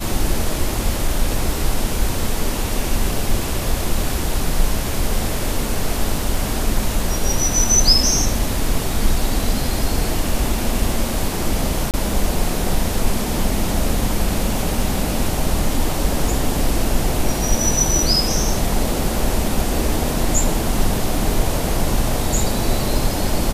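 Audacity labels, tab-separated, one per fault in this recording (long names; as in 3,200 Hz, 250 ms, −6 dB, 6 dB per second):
11.910000	11.940000	drop-out 28 ms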